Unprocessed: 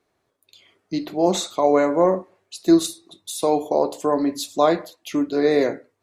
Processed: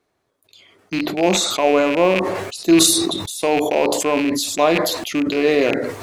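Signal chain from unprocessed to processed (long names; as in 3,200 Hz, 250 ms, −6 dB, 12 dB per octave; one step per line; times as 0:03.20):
loose part that buzzes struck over −34 dBFS, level −17 dBFS
level that may fall only so fast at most 35 dB per second
level +1 dB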